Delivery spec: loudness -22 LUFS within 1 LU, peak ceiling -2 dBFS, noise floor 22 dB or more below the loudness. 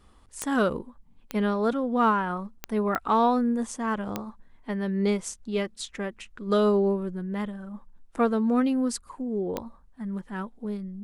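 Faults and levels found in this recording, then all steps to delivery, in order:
clicks 6; loudness -27.5 LUFS; peak -12.5 dBFS; loudness target -22.0 LUFS
-> de-click; gain +5.5 dB

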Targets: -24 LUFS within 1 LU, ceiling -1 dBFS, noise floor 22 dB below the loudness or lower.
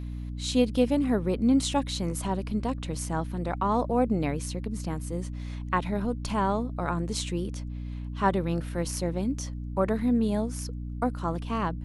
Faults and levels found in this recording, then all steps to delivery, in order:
hum 60 Hz; harmonics up to 300 Hz; hum level -33 dBFS; loudness -29.0 LUFS; peak -9.5 dBFS; loudness target -24.0 LUFS
-> de-hum 60 Hz, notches 5; gain +5 dB

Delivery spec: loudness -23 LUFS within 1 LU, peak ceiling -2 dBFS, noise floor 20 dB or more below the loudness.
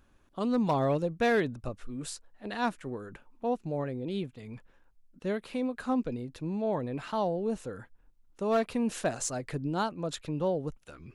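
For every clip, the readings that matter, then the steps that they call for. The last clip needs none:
clipped 0.3%; flat tops at -20.0 dBFS; loudness -32.0 LUFS; peak -20.0 dBFS; loudness target -23.0 LUFS
-> clip repair -20 dBFS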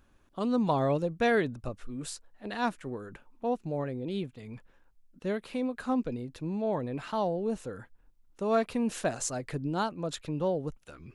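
clipped 0.0%; loudness -32.0 LUFS; peak -15.5 dBFS; loudness target -23.0 LUFS
-> gain +9 dB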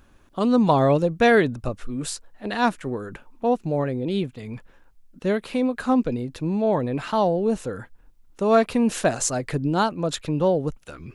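loudness -23.0 LUFS; peak -6.5 dBFS; noise floor -55 dBFS

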